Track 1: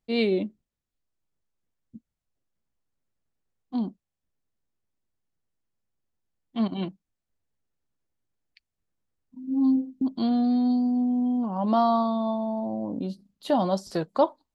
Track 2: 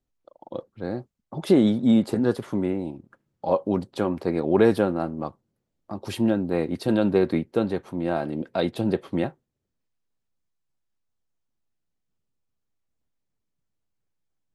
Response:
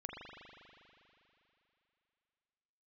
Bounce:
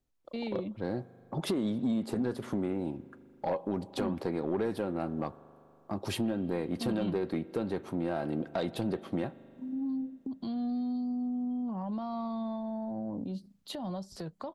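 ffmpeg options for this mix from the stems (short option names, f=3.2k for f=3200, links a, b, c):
-filter_complex "[0:a]acrossover=split=140[a][b];[b]acompressor=threshold=-37dB:ratio=8[c];[a][c]amix=inputs=2:normalize=0,alimiter=level_in=6dB:limit=-24dB:level=0:latency=1:release=155,volume=-6dB,adelay=250,volume=2dB[d];[1:a]acompressor=threshold=-26dB:ratio=6,volume=-1dB,asplit=2[e][f];[f]volume=-15.5dB[g];[2:a]atrim=start_sample=2205[h];[g][h]afir=irnorm=-1:irlink=0[i];[d][e][i]amix=inputs=3:normalize=0,asoftclip=type=tanh:threshold=-22.5dB"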